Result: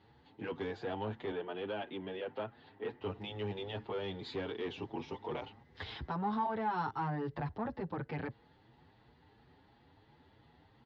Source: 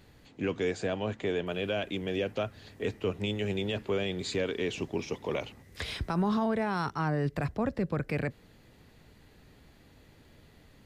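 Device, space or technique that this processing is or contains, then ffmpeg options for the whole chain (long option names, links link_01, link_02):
barber-pole flanger into a guitar amplifier: -filter_complex "[0:a]asplit=2[link_01][link_02];[link_02]adelay=7.2,afreqshift=2.9[link_03];[link_01][link_03]amix=inputs=2:normalize=1,asoftclip=type=tanh:threshold=-27dB,highpass=76,equalizer=frequency=190:width_type=q:width=4:gain=-5,equalizer=frequency=590:width_type=q:width=4:gain=-5,equalizer=frequency=860:width_type=q:width=4:gain=10,equalizer=frequency=2400:width_type=q:width=4:gain=-7,lowpass=frequency=4000:width=0.5412,lowpass=frequency=4000:width=1.3066,asettb=1/sr,asplit=3[link_04][link_05][link_06];[link_04]atrim=end=1.324[link_07];[link_05]atrim=start=1.32:end=3.01,asetpts=PTS-STARTPTS,afade=type=in:duration=0.004:curve=qsin,afade=type=out:start_time=1.686:duration=0.004:curve=qsin,acrossover=split=150 3900:gain=0.251 1 0.2[link_08][link_09][link_10];[link_08][link_09][link_10]amix=inputs=3:normalize=0[link_11];[link_06]atrim=start=3.006[link_12];[link_07][link_11]acrossfade=duration=0.004:curve1=hsin:curve2=qsin[link_13];[link_13][link_12]acrossfade=duration=0.004:curve1=qsin:curve2=hsin,volume=-2dB"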